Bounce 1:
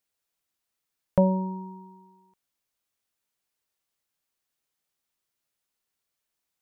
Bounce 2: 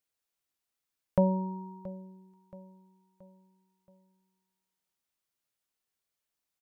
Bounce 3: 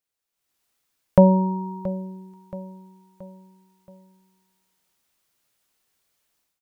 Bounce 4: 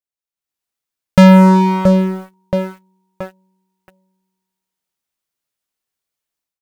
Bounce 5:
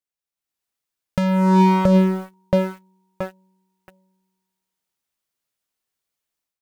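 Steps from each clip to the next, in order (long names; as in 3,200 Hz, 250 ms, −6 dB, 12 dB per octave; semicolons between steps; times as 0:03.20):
repeating echo 676 ms, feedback 45%, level −18 dB; level −4 dB
automatic gain control gain up to 14 dB
leveller curve on the samples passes 5
compressor whose output falls as the input rises −11 dBFS, ratio −1; level −3.5 dB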